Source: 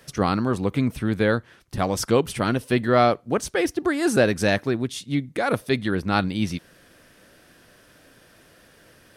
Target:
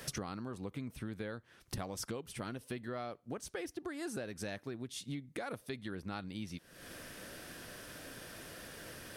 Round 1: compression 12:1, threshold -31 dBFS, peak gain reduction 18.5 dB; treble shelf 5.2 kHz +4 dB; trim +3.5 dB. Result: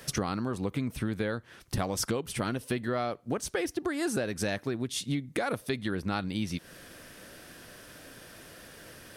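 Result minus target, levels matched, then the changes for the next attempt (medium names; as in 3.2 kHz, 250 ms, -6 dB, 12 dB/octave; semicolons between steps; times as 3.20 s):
compression: peak gain reduction -10.5 dB
change: compression 12:1, threshold -42.5 dBFS, peak gain reduction 29 dB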